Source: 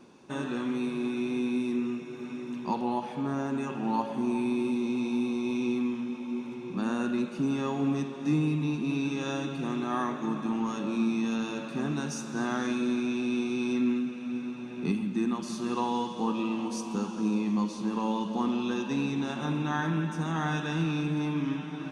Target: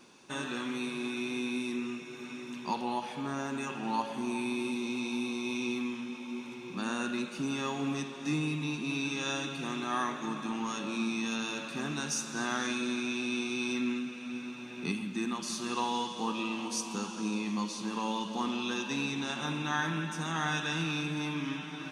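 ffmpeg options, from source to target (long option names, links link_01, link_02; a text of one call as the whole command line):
ffmpeg -i in.wav -af "tiltshelf=frequency=1200:gain=-6.5" out.wav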